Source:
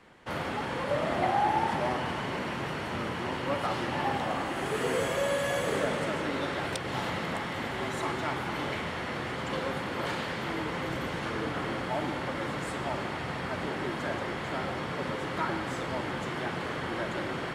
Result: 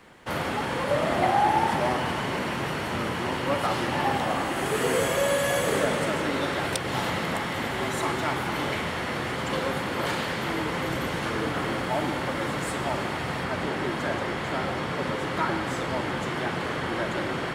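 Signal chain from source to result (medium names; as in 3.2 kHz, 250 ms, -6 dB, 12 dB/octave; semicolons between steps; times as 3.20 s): treble shelf 9.6 kHz +10.5 dB, from 13.44 s +3.5 dB; trim +4.5 dB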